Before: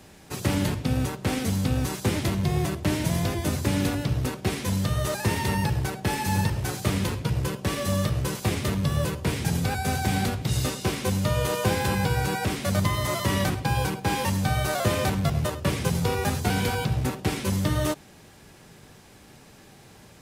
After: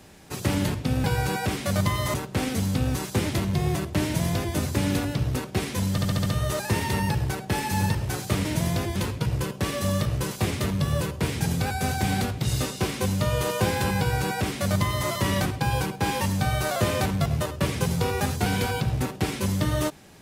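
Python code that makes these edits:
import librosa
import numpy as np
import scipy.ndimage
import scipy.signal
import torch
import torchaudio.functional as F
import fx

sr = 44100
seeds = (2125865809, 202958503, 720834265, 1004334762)

y = fx.edit(x, sr, fx.duplicate(start_s=2.94, length_s=0.51, to_s=7.0),
    fx.stutter(start_s=4.81, slice_s=0.07, count=6),
    fx.duplicate(start_s=12.03, length_s=1.1, to_s=1.04), tone=tone)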